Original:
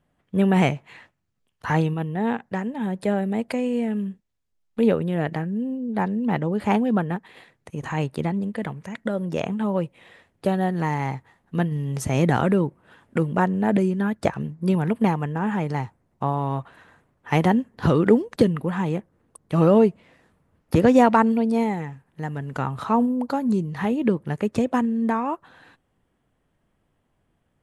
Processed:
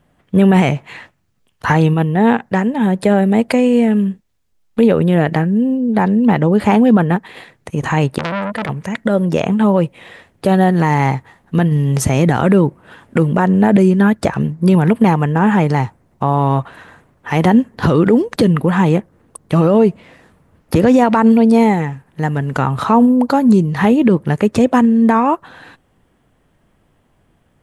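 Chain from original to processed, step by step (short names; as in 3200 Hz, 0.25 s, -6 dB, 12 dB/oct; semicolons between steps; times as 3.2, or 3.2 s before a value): maximiser +14 dB; 8.18–8.69 core saturation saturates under 1900 Hz; gain -2 dB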